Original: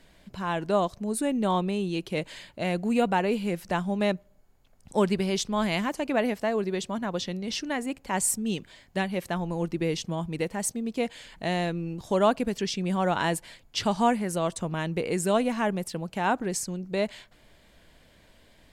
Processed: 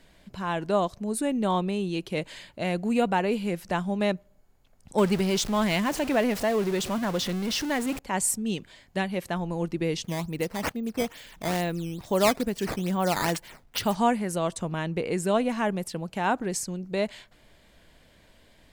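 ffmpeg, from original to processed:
-filter_complex "[0:a]asettb=1/sr,asplit=3[a][b][c];[a]atrim=end=4.984[d];[b]atrim=start=4.98:end=7.99,asetpts=PTS-STARTPTS,afade=t=in:d=0.004:c=qsin,afade=t=out:st=3.006:d=0.004:c=qsin,aeval=exprs='val(0)+0.5*0.0299*sgn(val(0))':c=same[e];[c]atrim=start=7.986[f];[d][e]acrossfade=d=0.004:c1=hsin:c2=qsin[g];[g][f]acrossfade=d=0.004:c1=qsin:c2=hsin,asettb=1/sr,asplit=3[h][i][j];[h]atrim=end=10.044[k];[i]atrim=start=10.04:end=13.95,asetpts=PTS-STARTPTS,afade=t=in:d=0.004:c=qsin,afade=t=out:st=3.906:d=0.004:c=qsin,acrusher=samples=9:mix=1:aa=0.000001:lfo=1:lforange=14.4:lforate=2.3[l];[j]atrim=start=13.946[m];[k][l]acrossfade=d=0.004:c1=hsin:c2=qsin[n];[n][m]acrossfade=d=0.004:c1=qsin:c2=hsin,asettb=1/sr,asplit=3[o][p][q];[o]atrim=end=14.794[r];[p]atrim=start=14.79:end=15.49,asetpts=PTS-STARTPTS,afade=t=in:d=0.004:c=qsin,afade=t=out:st=0.696:d=0.004:c=qsin,highshelf=f=5.2k:g=-5[s];[q]atrim=start=15.486[t];[r][s]acrossfade=d=0.004:c1=hsin:c2=qsin[u];[u][t]acrossfade=d=0.004:c1=qsin:c2=hsin"

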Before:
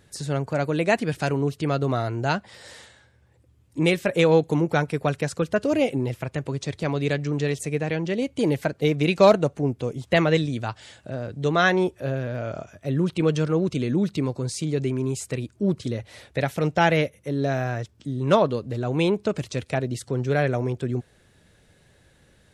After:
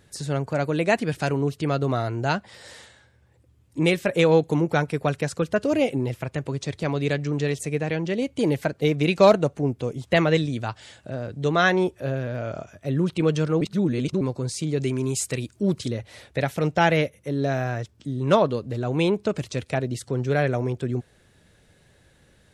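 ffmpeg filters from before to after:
-filter_complex "[0:a]asettb=1/sr,asplit=3[a][b][c];[a]atrim=end=14.804[d];[b]atrim=start=14.8:end=15.88,asetpts=PTS-STARTPTS,afade=t=in:d=0.004:c=qsin,afade=t=out:st=1.076:d=0.004:c=qsin,highshelf=f=2.4k:g=8[e];[c]atrim=start=15.876[f];[d][e]acrossfade=d=0.004:c1=hsin:c2=qsin[g];[g][f]acrossfade=d=0.004:c1=qsin:c2=hsin,asplit=3[h][i][j];[h]atrim=end=13.612[k];[i]atrim=start=13.608:end=14.212,asetpts=PTS-STARTPTS,areverse[l];[j]atrim=start=14.208[m];[k][l]acrossfade=d=0.004:c1=hsin:c2=hsin[n];[n][m]acrossfade=d=0.004:c1=hsin:c2=hsin"

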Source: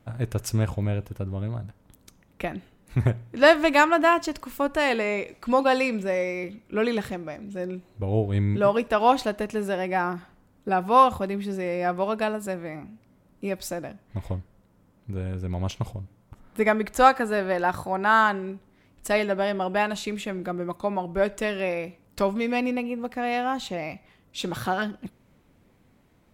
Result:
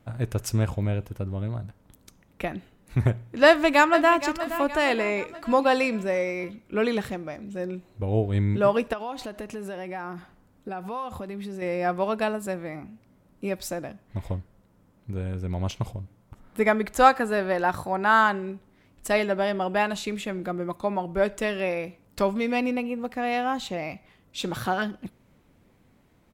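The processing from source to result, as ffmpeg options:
-filter_complex "[0:a]asplit=2[a][b];[b]afade=t=in:st=3.46:d=0.01,afade=t=out:st=4.19:d=0.01,aecho=0:1:470|940|1410|1880|2350:0.251189|0.125594|0.0627972|0.0313986|0.0156993[c];[a][c]amix=inputs=2:normalize=0,asettb=1/sr,asplit=3[d][e][f];[d]atrim=end=8.934[g];[e]atrim=start=8.93:end=11.62,asetpts=PTS-STARTPTS,afade=t=in:d=0.004:c=qsin,afade=t=out:st=2.686:d=0.004:c=qsin,acompressor=threshold=-32dB:ratio=4:attack=3.2:release=140:knee=1:detection=peak[h];[f]atrim=start=11.616[i];[g][h]acrossfade=d=0.004:c1=hsin:c2=qsin[j];[j][i]acrossfade=d=0.004:c1=qsin:c2=hsin"

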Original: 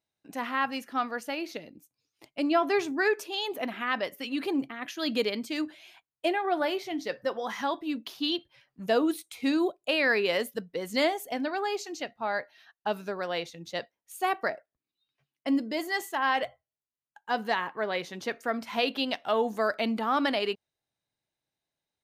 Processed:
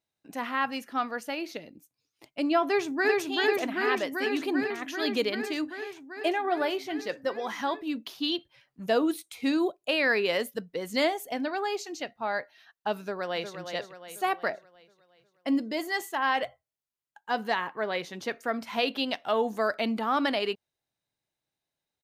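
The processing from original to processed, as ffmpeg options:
-filter_complex "[0:a]asplit=2[a][b];[b]afade=t=in:st=2.65:d=0.01,afade=t=out:st=3.2:d=0.01,aecho=0:1:390|780|1170|1560|1950|2340|2730|3120|3510|3900|4290|4680:0.841395|0.673116|0.538493|0.430794|0.344635|0.275708|0.220567|0.176453|0.141163|0.11293|0.0903441|0.0722753[c];[a][c]amix=inputs=2:normalize=0,asplit=2[d][e];[e]afade=t=in:st=12.99:d=0.01,afade=t=out:st=13.57:d=0.01,aecho=0:1:360|720|1080|1440|1800|2160:0.398107|0.199054|0.0995268|0.0497634|0.0248817|0.0124408[f];[d][f]amix=inputs=2:normalize=0"

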